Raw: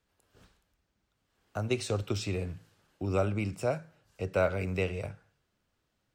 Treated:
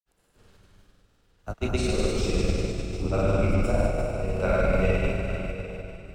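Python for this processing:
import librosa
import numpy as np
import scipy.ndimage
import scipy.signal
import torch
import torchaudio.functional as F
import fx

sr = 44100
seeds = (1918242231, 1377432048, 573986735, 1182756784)

y = fx.octave_divider(x, sr, octaves=2, level_db=3.0)
y = fx.rev_schroeder(y, sr, rt60_s=3.4, comb_ms=32, drr_db=-6.5)
y = fx.granulator(y, sr, seeds[0], grain_ms=100.0, per_s=20.0, spray_ms=100.0, spread_st=0)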